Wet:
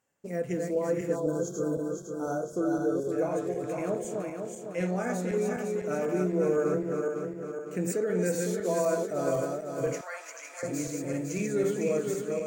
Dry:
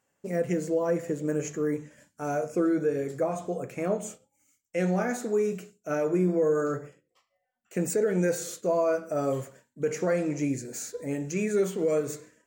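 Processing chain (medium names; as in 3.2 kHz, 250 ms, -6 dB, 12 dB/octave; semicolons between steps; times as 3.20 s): backward echo that repeats 253 ms, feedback 69%, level -3 dB; 1.16–3.12 s: spectral selection erased 1.6–3.2 kHz; 10.01–10.63 s: high-pass 850 Hz 24 dB/octave; trim -4 dB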